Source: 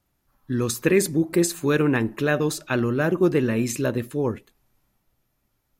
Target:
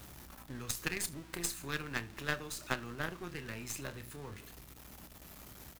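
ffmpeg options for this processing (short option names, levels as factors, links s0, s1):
-filter_complex "[0:a]aeval=exprs='val(0)+0.5*0.0316*sgn(val(0))':c=same,highpass=42,acrossover=split=120|980[s0][s1][s2];[s1]acompressor=threshold=0.0251:ratio=5[s3];[s0][s3][s2]amix=inputs=3:normalize=0,aeval=exprs='val(0)+0.00891*(sin(2*PI*60*n/s)+sin(2*PI*2*60*n/s)/2+sin(2*PI*3*60*n/s)/3+sin(2*PI*4*60*n/s)/4+sin(2*PI*5*60*n/s)/5)':c=same,asplit=2[s4][s5];[s5]aecho=0:1:29|76:0.316|0.133[s6];[s4][s6]amix=inputs=2:normalize=0,aeval=exprs='0.282*(cos(1*acos(clip(val(0)/0.282,-1,1)))-cos(1*PI/2))+0.0631*(cos(2*acos(clip(val(0)/0.282,-1,1)))-cos(2*PI/2))+0.0708*(cos(3*acos(clip(val(0)/0.282,-1,1)))-cos(3*PI/2))':c=same,volume=0.596"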